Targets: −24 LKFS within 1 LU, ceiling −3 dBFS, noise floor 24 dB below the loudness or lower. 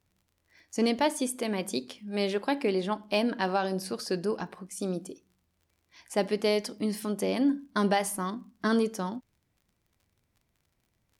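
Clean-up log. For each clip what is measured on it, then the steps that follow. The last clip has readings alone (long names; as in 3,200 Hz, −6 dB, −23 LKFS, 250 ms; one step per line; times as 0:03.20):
crackle rate 37 per second; integrated loudness −30.0 LKFS; sample peak −14.5 dBFS; target loudness −24.0 LKFS
→ click removal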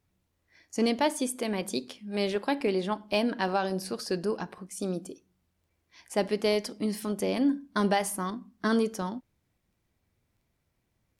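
crackle rate 0.36 per second; integrated loudness −30.0 LKFS; sample peak −14.5 dBFS; target loudness −24.0 LKFS
→ level +6 dB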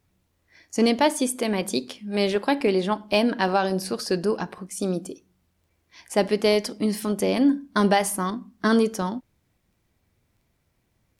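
integrated loudness −24.0 LKFS; sample peak −8.5 dBFS; background noise floor −71 dBFS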